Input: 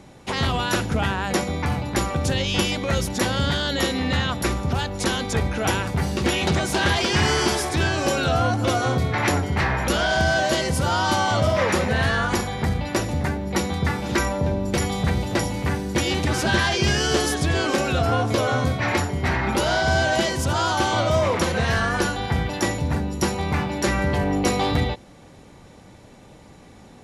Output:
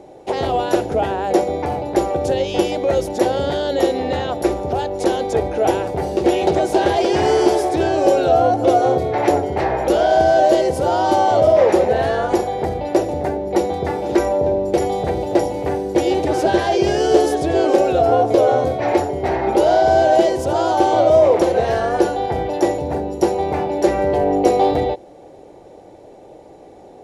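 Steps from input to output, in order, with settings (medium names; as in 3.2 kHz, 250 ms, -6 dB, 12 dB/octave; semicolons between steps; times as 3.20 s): high-order bell 510 Hz +16 dB; trim -5.5 dB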